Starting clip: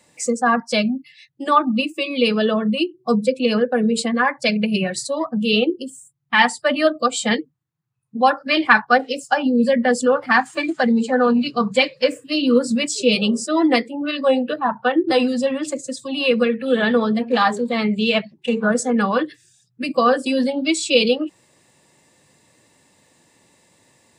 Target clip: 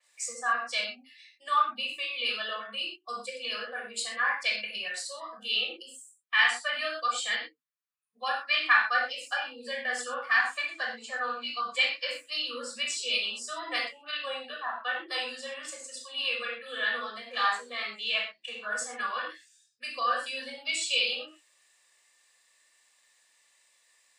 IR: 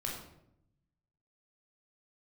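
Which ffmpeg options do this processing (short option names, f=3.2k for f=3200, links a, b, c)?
-filter_complex "[0:a]highpass=1.5k[a];[1:a]atrim=start_sample=2205,afade=t=out:st=0.18:d=0.01,atrim=end_sample=8379[b];[a][b]afir=irnorm=-1:irlink=0,adynamicequalizer=threshold=0.0141:dfrequency=4700:dqfactor=0.7:tfrequency=4700:tqfactor=0.7:attack=5:release=100:ratio=0.375:range=2:mode=cutabove:tftype=highshelf,volume=-6dB"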